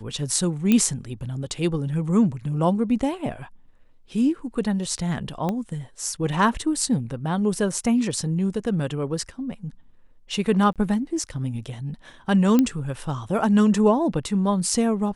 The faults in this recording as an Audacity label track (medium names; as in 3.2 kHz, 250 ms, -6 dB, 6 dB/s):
0.720000	0.720000	pop -7 dBFS
5.490000	5.490000	pop -14 dBFS
10.730000	10.760000	dropout 27 ms
12.590000	12.590000	pop -7 dBFS